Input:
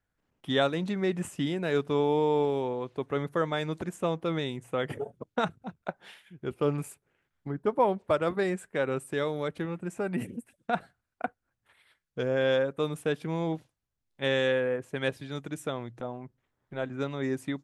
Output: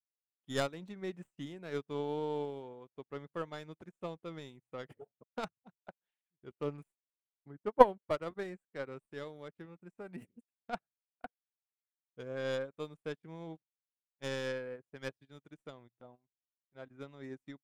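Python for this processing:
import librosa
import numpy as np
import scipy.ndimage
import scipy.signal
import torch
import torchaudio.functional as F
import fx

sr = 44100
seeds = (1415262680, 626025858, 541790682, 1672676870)

p1 = fx.tracing_dist(x, sr, depth_ms=0.12)
p2 = fx.level_steps(p1, sr, step_db=20)
p3 = p1 + F.gain(torch.from_numpy(p2), 2.5).numpy()
y = fx.upward_expand(p3, sr, threshold_db=-46.0, expansion=2.5)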